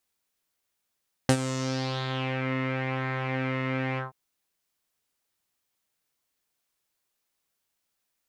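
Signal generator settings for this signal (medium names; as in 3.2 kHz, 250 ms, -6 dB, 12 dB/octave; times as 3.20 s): synth patch with pulse-width modulation C4, sub -1.5 dB, filter lowpass, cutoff 830 Hz, Q 3.2, filter envelope 3.5 oct, filter decay 1.12 s, attack 1.7 ms, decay 0.07 s, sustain -12.5 dB, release 0.14 s, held 2.69 s, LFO 0.97 Hz, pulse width 21%, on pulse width 12%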